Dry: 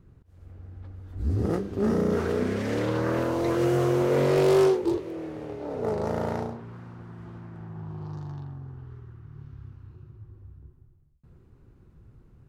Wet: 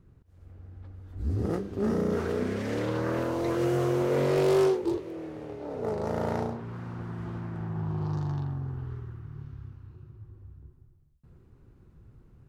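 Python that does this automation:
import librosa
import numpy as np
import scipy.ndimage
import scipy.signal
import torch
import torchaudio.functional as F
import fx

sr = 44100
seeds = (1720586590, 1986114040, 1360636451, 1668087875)

y = fx.gain(x, sr, db=fx.line((6.0, -3.0), (6.99, 6.0), (8.9, 6.0), (9.84, -1.0)))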